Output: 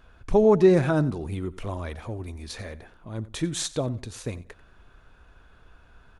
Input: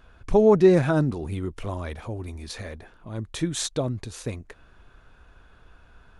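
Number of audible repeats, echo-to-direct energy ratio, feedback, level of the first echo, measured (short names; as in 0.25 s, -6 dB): 2, -18.0 dB, 25%, -18.5 dB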